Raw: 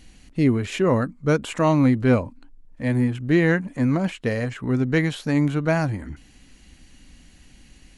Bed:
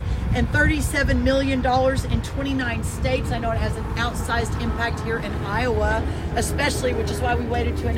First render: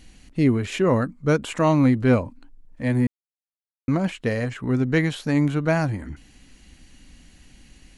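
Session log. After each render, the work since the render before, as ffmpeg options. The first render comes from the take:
-filter_complex "[0:a]asplit=3[a][b][c];[a]atrim=end=3.07,asetpts=PTS-STARTPTS,afade=t=out:st=3.066:d=0.004:c=hsin[d];[b]atrim=start=3.07:end=3.88,asetpts=PTS-STARTPTS,volume=0[e];[c]atrim=start=3.88,asetpts=PTS-STARTPTS,afade=t=in:d=0.004:c=hsin[f];[d][e][f]concat=n=3:v=0:a=1"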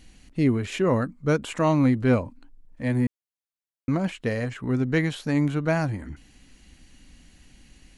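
-af "volume=-2.5dB"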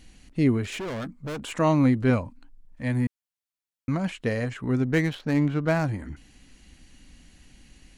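-filter_complex "[0:a]asettb=1/sr,asplit=3[a][b][c];[a]atrim=end=0.644[d];[b]atrim=start=0.64:end=1.52,asetpts=PTS-STARTPTS,afade=t=in:d=0.004:c=qsin,afade=t=out:st=0.876:d=0.004:c=qsin,volume=30.5dB,asoftclip=hard,volume=-30.5dB[e];[c]atrim=start=1.516[f];[d][e]acrossfade=d=0.004:c1=hsin:c2=qsin[g];[g][f]acrossfade=d=0.004:c1=qsin:c2=hsin,asettb=1/sr,asplit=3[h][i][j];[h]atrim=end=2.104[k];[i]atrim=start=2.1:end=4.11,asetpts=PTS-STARTPTS,afade=t=in:d=0.004:c=qsin,afade=t=out:st=2.006:d=0.004:c=qsin,equalizer=f=400:t=o:w=1.1:g=-6.5[l];[j]atrim=start=4.106[m];[k][l]acrossfade=d=0.004:c1=hsin:c2=qsin[n];[n][m]acrossfade=d=0.004:c1=qsin:c2=hsin,asettb=1/sr,asplit=3[o][p][q];[o]atrim=end=4.854[r];[p]atrim=start=4.85:end=5.85,asetpts=PTS-STARTPTS,afade=t=in:d=0.004:c=qsin,afade=t=out:st=0.996:d=0.004:c=qsin,adynamicsmooth=sensitivity=7:basefreq=2k[s];[q]atrim=start=5.846[t];[r][s]acrossfade=d=0.004:c1=hsin:c2=qsin[u];[u][t]acrossfade=d=0.004:c1=qsin:c2=hsin"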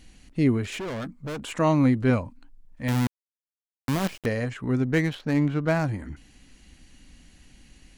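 -filter_complex "[0:a]asettb=1/sr,asplit=3[a][b][c];[a]atrim=end=2.884[d];[b]atrim=start=2.88:end=4.26,asetpts=PTS-STARTPTS,afade=t=in:d=0.004:c=qsin,afade=t=out:st=1.376:d=0.004:c=qsin,acrusher=bits=5:dc=4:mix=0:aa=0.000001[e];[c]atrim=start=4.256[f];[d][e]acrossfade=d=0.004:c1=hsin:c2=qsin[g];[g][f]acrossfade=d=0.004:c1=qsin:c2=hsin"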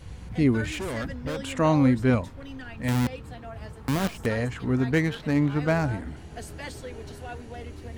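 -filter_complex "[1:a]volume=-16.5dB[a];[0:a][a]amix=inputs=2:normalize=0"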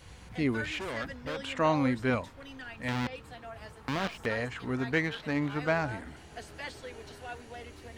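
-filter_complex "[0:a]lowshelf=f=410:g=-11.5,acrossover=split=5100[a][b];[b]acompressor=threshold=-58dB:ratio=4:attack=1:release=60[c];[a][c]amix=inputs=2:normalize=0"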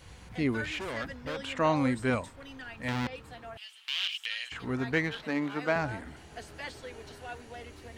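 -filter_complex "[0:a]asettb=1/sr,asplit=3[a][b][c];[a]atrim=end=1.764[d];[b]atrim=start=1.76:end=2.36,asetpts=PTS-STARTPTS,afade=t=in:d=0.004:c=qsin,afade=t=out:st=0.596:d=0.004:c=qsin,equalizer=f=8.2k:w=4.4:g=14.5[e];[c]atrim=start=2.356[f];[d][e]acrossfade=d=0.004:c1=hsin:c2=qsin[g];[g][f]acrossfade=d=0.004:c1=qsin:c2=hsin,asettb=1/sr,asplit=3[h][i][j];[h]atrim=end=3.574[k];[i]atrim=start=3.57:end=4.52,asetpts=PTS-STARTPTS,afade=t=in:d=0.004:c=qsin,afade=t=out:st=0.946:d=0.004:c=qsin,highpass=f=3k:t=q:w=5.5[l];[j]atrim=start=4.516[m];[k][l]acrossfade=d=0.004:c1=hsin:c2=qsin[n];[n][m]acrossfade=d=0.004:c1=qsin:c2=hsin,asettb=1/sr,asplit=3[o][p][q];[o]atrim=end=5.244[r];[p]atrim=start=5.24:end=5.76,asetpts=PTS-STARTPTS,afade=t=in:d=0.004:c=qsin,afade=t=out:st=0.516:d=0.004:c=qsin,highpass=f=180:w=0.5412,highpass=f=180:w=1.3066[s];[q]atrim=start=5.756[t];[r][s]acrossfade=d=0.004:c1=hsin:c2=qsin[u];[u][t]acrossfade=d=0.004:c1=qsin:c2=hsin"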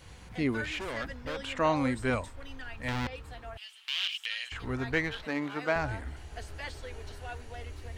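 -af "asubboost=boost=8.5:cutoff=62"

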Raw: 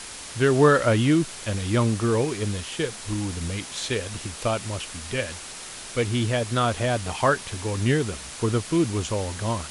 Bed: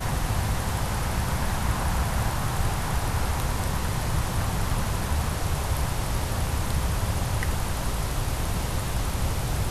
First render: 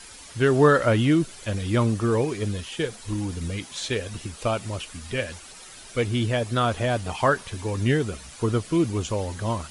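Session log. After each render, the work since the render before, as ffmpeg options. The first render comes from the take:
-af "afftdn=nr=10:nf=-39"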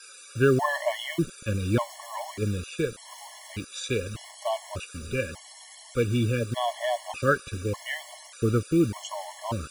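-filter_complex "[0:a]acrossover=split=490|1300[a][b][c];[a]acrusher=bits=6:mix=0:aa=0.000001[d];[d][b][c]amix=inputs=3:normalize=0,afftfilt=real='re*gt(sin(2*PI*0.84*pts/sr)*(1-2*mod(floor(b*sr/1024/570),2)),0)':imag='im*gt(sin(2*PI*0.84*pts/sr)*(1-2*mod(floor(b*sr/1024/570),2)),0)':win_size=1024:overlap=0.75"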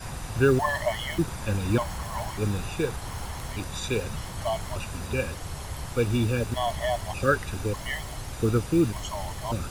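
-filter_complex "[1:a]volume=-9.5dB[a];[0:a][a]amix=inputs=2:normalize=0"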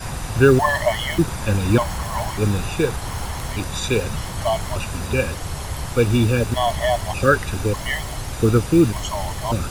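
-af "volume=7.5dB,alimiter=limit=-2dB:level=0:latency=1"

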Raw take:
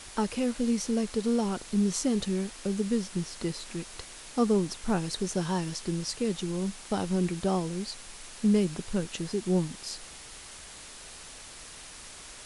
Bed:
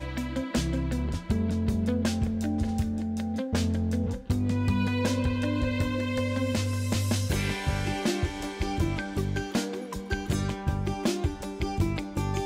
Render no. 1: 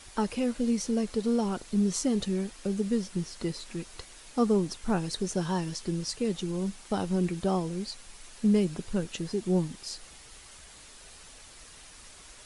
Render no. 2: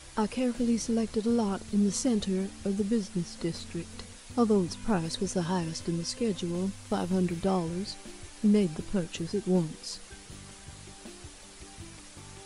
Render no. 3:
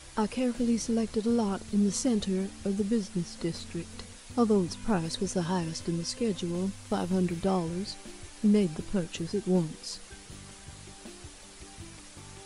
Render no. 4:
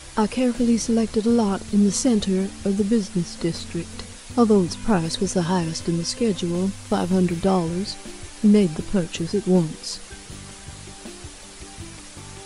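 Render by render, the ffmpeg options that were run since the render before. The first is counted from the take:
-af "afftdn=nr=6:nf=-46"
-filter_complex "[1:a]volume=-20.5dB[a];[0:a][a]amix=inputs=2:normalize=0"
-af anull
-af "volume=8dB"

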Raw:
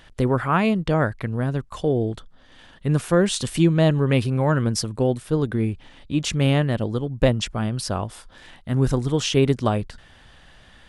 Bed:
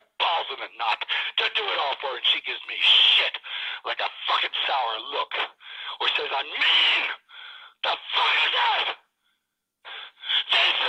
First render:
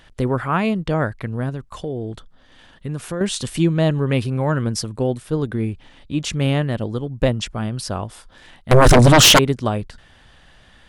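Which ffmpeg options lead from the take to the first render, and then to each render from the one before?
-filter_complex "[0:a]asettb=1/sr,asplit=3[a][b][c];[a]atrim=end=1.494[d];[b]atrim=start=1.49:end=3.21,asetpts=PTS-STARTPTS,afade=t=in:d=0.004:c=qsin,afade=t=out:st=1.716:d=0.004:c=qsin,acompressor=threshold=-24dB:ratio=3:attack=3.2:release=140:knee=1:detection=peak[e];[c]atrim=start=3.206[f];[d][e]acrossfade=d=0.004:c1=hsin:c2=qsin[g];[g][f]acrossfade=d=0.004:c1=qsin:c2=hsin,asettb=1/sr,asplit=3[h][i][j];[h]atrim=end=8.714[k];[i]atrim=start=8.71:end=9.39,asetpts=PTS-STARTPTS,afade=t=in:d=0.004:c=qsin,afade=t=out:st=0.676:d=0.004:c=qsin,aeval=exprs='0.501*sin(PI/2*6.31*val(0)/0.501)':c=same[l];[j]atrim=start=9.386[m];[k][l]acrossfade=d=0.004:c1=hsin:c2=qsin[n];[n][m]acrossfade=d=0.004:c1=qsin:c2=hsin"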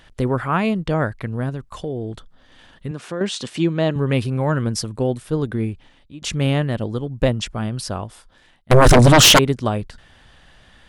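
-filter_complex "[0:a]asettb=1/sr,asplit=3[a][b][c];[a]atrim=end=2.914[d];[b]atrim=start=2.91:end=3.96,asetpts=PTS-STARTPTS,afade=t=in:d=0.004:c=qsin,afade=t=out:st=1.046:d=0.004:c=qsin,highpass=190,lowpass=6.1k[e];[c]atrim=start=3.956[f];[d][e]acrossfade=d=0.004:c1=hsin:c2=qsin[g];[g][f]acrossfade=d=0.004:c1=qsin:c2=hsin,asplit=3[h][i][j];[h]atrim=end=6.22,asetpts=PTS-STARTPTS,afade=t=out:st=5.62:d=0.6:silence=0.0841395[k];[i]atrim=start=6.22:end=8.7,asetpts=PTS-STARTPTS,afade=t=in:d=0.004:c=hsin:silence=0.0841395,afade=t=out:st=1.6:d=0.88:silence=0.141254[l];[j]atrim=start=8.7,asetpts=PTS-STARTPTS,afade=t=in:d=0.004:c=hsin:silence=0.141254[m];[k][l][m]concat=n=3:v=0:a=1"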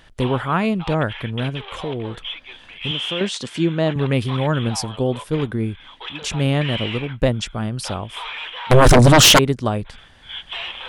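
-filter_complex "[1:a]volume=-9.5dB[a];[0:a][a]amix=inputs=2:normalize=0"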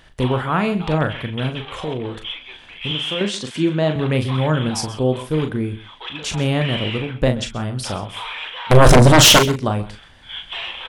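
-filter_complex "[0:a]asplit=2[a][b];[b]adelay=39,volume=-7.5dB[c];[a][c]amix=inputs=2:normalize=0,aecho=1:1:130:0.141"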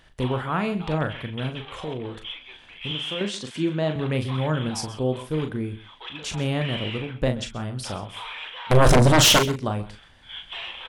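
-af "volume=-6dB"

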